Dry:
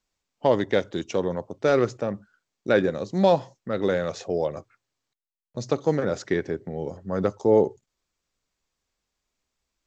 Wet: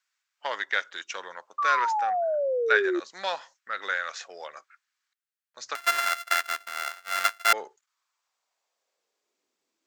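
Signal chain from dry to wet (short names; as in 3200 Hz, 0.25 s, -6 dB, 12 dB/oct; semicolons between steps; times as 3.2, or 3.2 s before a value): 5.75–7.53 sample sorter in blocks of 64 samples; high-pass sweep 1500 Hz -> 310 Hz, 7.64–9.57; 1.58–3 painted sound fall 340–1200 Hz -26 dBFS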